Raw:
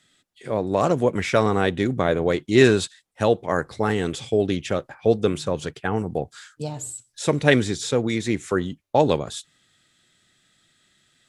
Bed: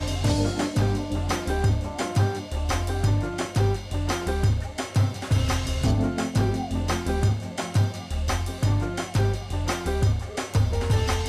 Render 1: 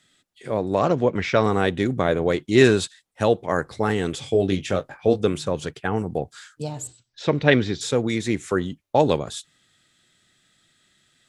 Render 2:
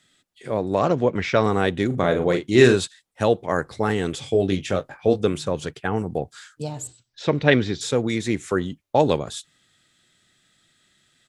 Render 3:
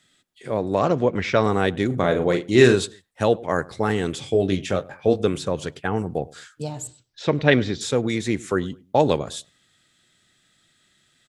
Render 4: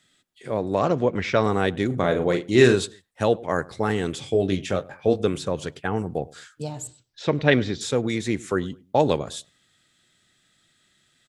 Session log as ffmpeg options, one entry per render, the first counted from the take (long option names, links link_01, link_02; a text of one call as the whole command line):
ffmpeg -i in.wav -filter_complex "[0:a]asettb=1/sr,asplit=3[link_01][link_02][link_03];[link_01]atrim=end=0.794[link_04];[link_02]atrim=start=0.79:end=1.44,asetpts=PTS-STARTPTS,afade=type=in:duration=0.004:curve=qsin,afade=type=out:start_time=0.646:duration=0.004:curve=qsin,lowpass=frequency=5700:width=0.5412,lowpass=frequency=5700:width=1.3066[link_05];[link_03]atrim=start=1.436[link_06];[link_04][link_05]acrossfade=duration=0.004:curve1=hsin:curve2=qsin[link_07];[link_07][link_06]acrossfade=duration=0.004:curve1=qsin:curve2=hsin,asettb=1/sr,asplit=3[link_08][link_09][link_10];[link_08]atrim=end=4.204[link_11];[link_09]atrim=start=4.2:end=5.22,asetpts=PTS-STARTPTS,afade=type=in:duration=0.004:curve=qsin,afade=type=out:start_time=1.016:duration=0.004:curve=qsin,asplit=2[link_12][link_13];[link_13]adelay=21,volume=-7dB[link_14];[link_12][link_14]amix=inputs=2:normalize=0,atrim=end_sample=44982[link_15];[link_10]atrim=start=5.216[link_16];[link_11][link_15]acrossfade=duration=0.004:curve1=hsin:curve2=qsin[link_17];[link_17][link_16]acrossfade=duration=0.004:curve1=qsin:curve2=hsin,asettb=1/sr,asplit=3[link_18][link_19][link_20];[link_18]atrim=end=6.874[link_21];[link_19]atrim=start=6.87:end=7.81,asetpts=PTS-STARTPTS,afade=type=in:duration=0.004:curve=qsin,afade=type=out:start_time=0.936:duration=0.004:curve=qsin,lowpass=frequency=4800:width=0.5412,lowpass=frequency=4800:width=1.3066[link_22];[link_20]atrim=start=7.806[link_23];[link_21][link_22]acrossfade=duration=0.004:curve1=hsin:curve2=qsin[link_24];[link_24][link_23]acrossfade=duration=0.004:curve1=qsin:curve2=hsin" out.wav
ffmpeg -i in.wav -filter_complex "[0:a]asplit=3[link_01][link_02][link_03];[link_01]afade=type=out:start_time=1.9:duration=0.02[link_04];[link_02]asplit=2[link_05][link_06];[link_06]adelay=40,volume=-7dB[link_07];[link_05][link_07]amix=inputs=2:normalize=0,afade=type=in:start_time=1.9:duration=0.02,afade=type=out:start_time=2.75:duration=0.02[link_08];[link_03]afade=type=in:start_time=2.75:duration=0.02[link_09];[link_04][link_08][link_09]amix=inputs=3:normalize=0" out.wav
ffmpeg -i in.wav -filter_complex "[0:a]asplit=2[link_01][link_02];[link_02]adelay=103,lowpass=frequency=1200:poles=1,volume=-21dB,asplit=2[link_03][link_04];[link_04]adelay=103,lowpass=frequency=1200:poles=1,volume=0.33[link_05];[link_01][link_03][link_05]amix=inputs=3:normalize=0" out.wav
ffmpeg -i in.wav -af "volume=-1.5dB" out.wav